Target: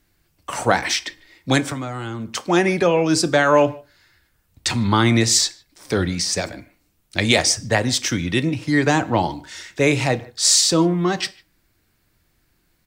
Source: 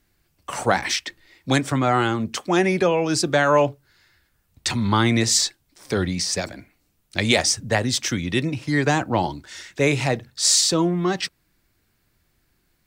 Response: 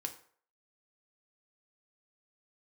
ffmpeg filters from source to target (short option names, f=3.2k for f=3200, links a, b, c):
-filter_complex "[0:a]asettb=1/sr,asplit=3[a][b][c];[a]atrim=end=1.714[d];[b]atrim=start=1.71:end=2.35,asetpts=PTS-STARTPTS,afade=t=in:d=0.004:c=qsin,afade=t=out:st=0.636:d=0.004:c=qsin,acrossover=split=220|4800[e][f][g];[e]acompressor=threshold=-34dB:ratio=4[h];[f]acompressor=threshold=-33dB:ratio=4[i];[g]acompressor=threshold=-53dB:ratio=4[j];[h][i][j]amix=inputs=3:normalize=0[k];[c]atrim=start=2.346[l];[d][k]acrossfade=d=0.004:c1=hsin:c2=qsin[m];[m][l]acrossfade=d=0.004:c1=qsin:c2=hsin,asplit=2[n][o];[o]adelay=150,highpass=300,lowpass=3.4k,asoftclip=type=hard:threshold=-13dB,volume=-24dB[p];[n][p]amix=inputs=2:normalize=0,asplit=2[q][r];[1:a]atrim=start_sample=2205,afade=t=out:st=0.22:d=0.01,atrim=end_sample=10143[s];[r][s]afir=irnorm=-1:irlink=0,volume=-3.5dB[t];[q][t]amix=inputs=2:normalize=0,volume=-1.5dB"